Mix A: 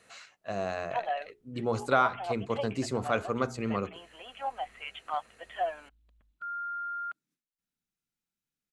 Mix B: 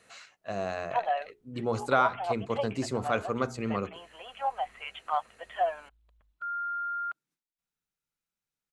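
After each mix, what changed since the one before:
background: add graphic EQ 250/500/1000 Hz -8/+3/+5 dB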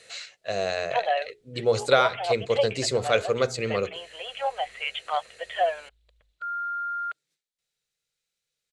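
master: add ten-band graphic EQ 125 Hz +4 dB, 250 Hz -7 dB, 500 Hz +12 dB, 1 kHz -6 dB, 2 kHz +7 dB, 4 kHz +12 dB, 8 kHz +9 dB

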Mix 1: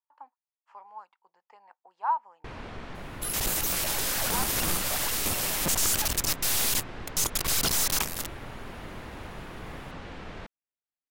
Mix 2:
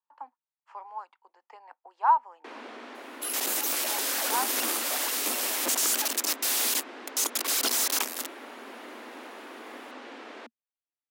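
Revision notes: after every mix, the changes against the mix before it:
speech +5.5 dB; master: add steep high-pass 230 Hz 96 dB/octave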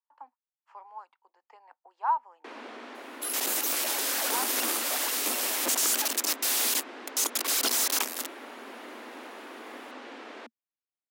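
speech -5.0 dB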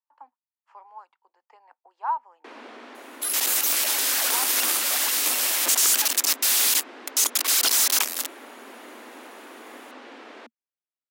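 second sound: add tilt shelf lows -6.5 dB, about 670 Hz

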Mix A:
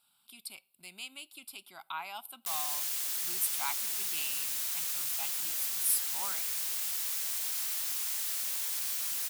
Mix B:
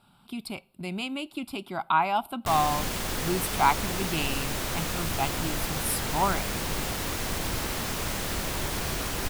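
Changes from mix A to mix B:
background: add bass shelf 290 Hz +10.5 dB; master: remove pre-emphasis filter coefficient 0.97

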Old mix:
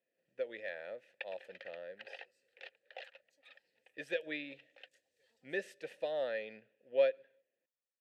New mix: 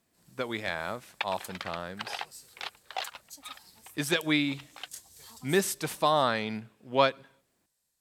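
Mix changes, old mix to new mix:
first sound +6.0 dB; master: remove vowel filter e

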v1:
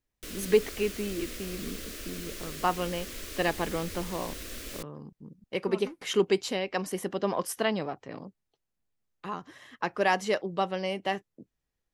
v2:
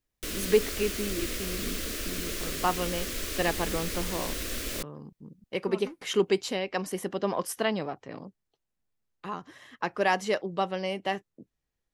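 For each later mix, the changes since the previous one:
background +6.5 dB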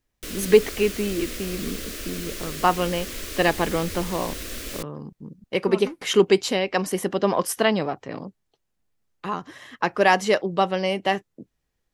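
speech +7.5 dB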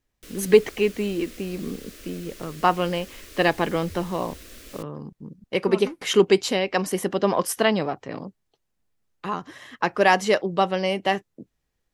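background -10.5 dB

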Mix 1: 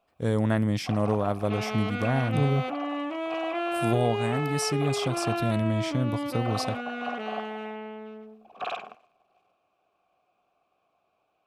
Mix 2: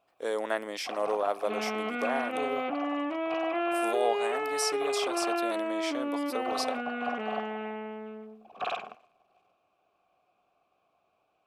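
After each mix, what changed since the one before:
speech: add high-pass 410 Hz 24 dB/octave; second sound: add low-pass 3 kHz 24 dB/octave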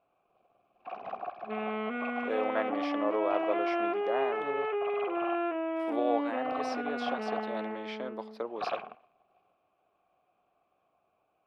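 speech: entry +2.05 s; master: add distance through air 320 m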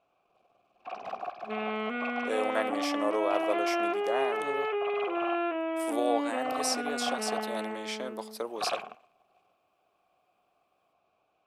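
master: remove distance through air 320 m

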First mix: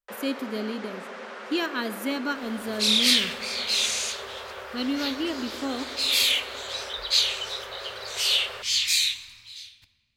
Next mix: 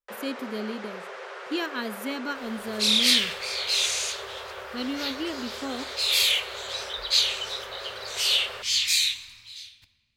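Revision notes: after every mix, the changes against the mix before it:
speech: send off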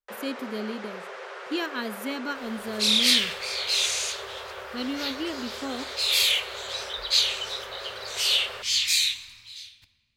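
no change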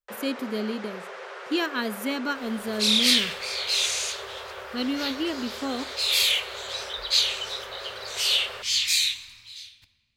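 speech +3.5 dB

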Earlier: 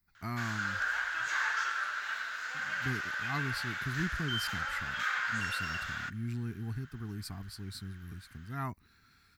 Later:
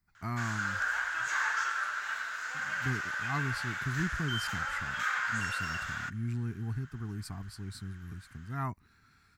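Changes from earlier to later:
speech: add treble shelf 8.1 kHz -9.5 dB; master: add graphic EQ 125/1000/4000/8000 Hz +3/+3/-4/+6 dB

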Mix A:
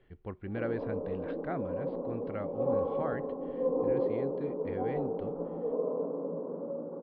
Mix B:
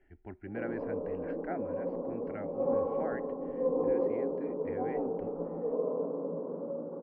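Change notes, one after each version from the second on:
speech: add static phaser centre 740 Hz, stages 8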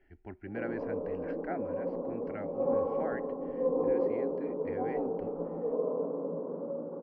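master: remove distance through air 190 m

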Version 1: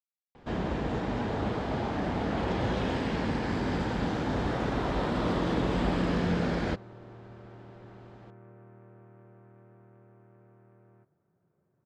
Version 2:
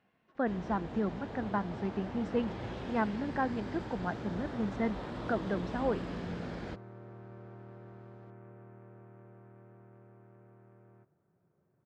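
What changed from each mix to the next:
speech: unmuted; first sound -11.5 dB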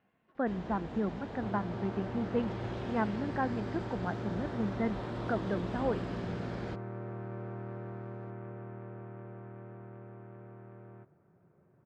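speech: add distance through air 200 m; second sound +8.5 dB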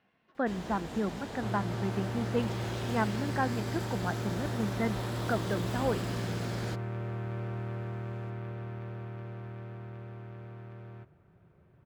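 second sound: remove band-pass 160–2000 Hz; master: remove tape spacing loss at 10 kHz 25 dB

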